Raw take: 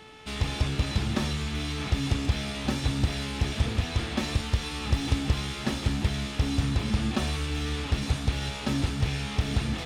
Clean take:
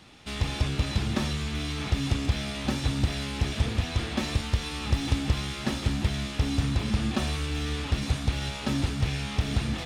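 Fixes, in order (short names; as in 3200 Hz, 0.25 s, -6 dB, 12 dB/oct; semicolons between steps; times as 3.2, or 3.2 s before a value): de-hum 435.5 Hz, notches 8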